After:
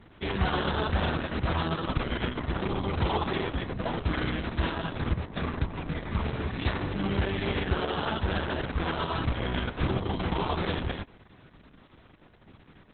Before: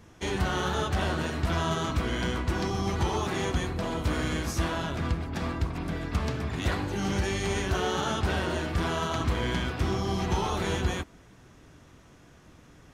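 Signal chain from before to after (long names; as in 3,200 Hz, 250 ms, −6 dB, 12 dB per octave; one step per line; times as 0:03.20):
0:01.25–0:02.95: upward compression, threshold −35 dBFS
level +1 dB
Opus 6 kbit/s 48,000 Hz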